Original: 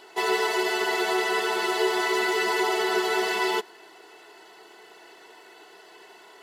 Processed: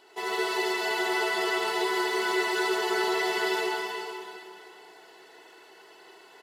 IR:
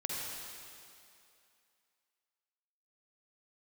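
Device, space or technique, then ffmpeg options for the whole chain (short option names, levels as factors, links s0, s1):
cave: -filter_complex "[0:a]aecho=1:1:319:0.355[s0];[1:a]atrim=start_sample=2205[s1];[s0][s1]afir=irnorm=-1:irlink=0,volume=0.473"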